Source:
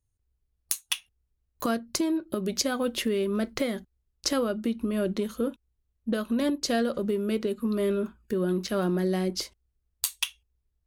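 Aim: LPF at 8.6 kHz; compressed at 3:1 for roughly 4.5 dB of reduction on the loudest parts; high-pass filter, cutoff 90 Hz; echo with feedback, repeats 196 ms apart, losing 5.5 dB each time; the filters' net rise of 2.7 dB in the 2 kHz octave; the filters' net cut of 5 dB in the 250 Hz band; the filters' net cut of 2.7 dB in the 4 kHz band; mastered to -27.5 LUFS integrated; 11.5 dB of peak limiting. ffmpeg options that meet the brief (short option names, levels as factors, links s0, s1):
-af "highpass=90,lowpass=8600,equalizer=f=250:t=o:g=-6.5,equalizer=f=2000:t=o:g=5,equalizer=f=4000:t=o:g=-5,acompressor=threshold=0.0316:ratio=3,alimiter=level_in=1.06:limit=0.0631:level=0:latency=1,volume=0.944,aecho=1:1:196|392|588|784|980|1176|1372:0.531|0.281|0.149|0.079|0.0419|0.0222|0.0118,volume=2.24"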